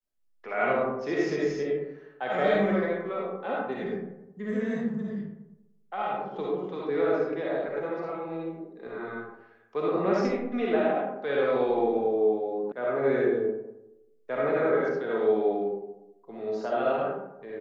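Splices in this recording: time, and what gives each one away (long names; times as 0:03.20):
0:12.72: cut off before it has died away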